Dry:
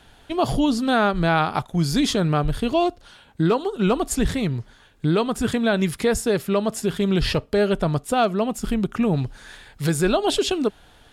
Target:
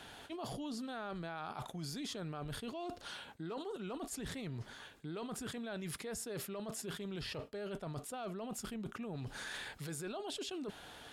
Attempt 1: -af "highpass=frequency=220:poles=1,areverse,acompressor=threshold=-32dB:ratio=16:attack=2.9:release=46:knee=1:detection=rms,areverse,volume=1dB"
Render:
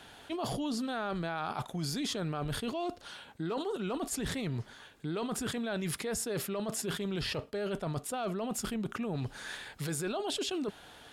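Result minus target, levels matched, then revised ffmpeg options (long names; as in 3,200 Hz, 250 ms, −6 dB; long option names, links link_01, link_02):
downward compressor: peak gain reduction −8 dB
-af "highpass=frequency=220:poles=1,areverse,acompressor=threshold=-40.5dB:ratio=16:attack=2.9:release=46:knee=1:detection=rms,areverse,volume=1dB"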